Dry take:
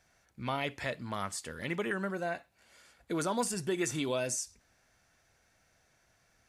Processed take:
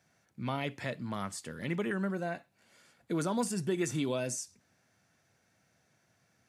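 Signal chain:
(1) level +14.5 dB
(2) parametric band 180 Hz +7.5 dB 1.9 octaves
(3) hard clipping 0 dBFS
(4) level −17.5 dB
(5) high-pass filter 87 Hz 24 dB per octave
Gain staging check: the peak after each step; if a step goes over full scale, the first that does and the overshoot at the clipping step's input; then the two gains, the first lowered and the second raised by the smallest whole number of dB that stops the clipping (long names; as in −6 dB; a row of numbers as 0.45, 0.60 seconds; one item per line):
−4.5, −2.5, −2.5, −20.0, −20.0 dBFS
no step passes full scale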